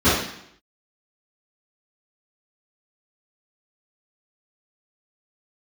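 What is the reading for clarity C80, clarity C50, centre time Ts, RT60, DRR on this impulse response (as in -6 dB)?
5.0 dB, 0.5 dB, 61 ms, 0.70 s, -17.5 dB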